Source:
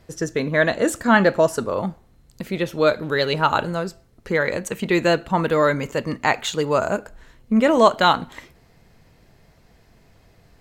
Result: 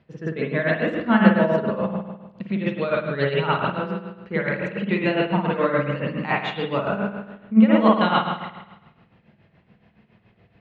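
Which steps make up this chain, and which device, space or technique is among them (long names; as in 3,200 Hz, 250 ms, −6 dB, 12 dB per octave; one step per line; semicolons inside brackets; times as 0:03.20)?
high-shelf EQ 4,500 Hz +6 dB
combo amplifier with spring reverb and tremolo (spring reverb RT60 1.1 s, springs 50 ms, chirp 60 ms, DRR −4.5 dB; amplitude tremolo 7.1 Hz, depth 68%; loudspeaker in its box 86–3,400 Hz, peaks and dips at 140 Hz +4 dB, 200 Hz +10 dB, 2,700 Hz +4 dB)
level −6.5 dB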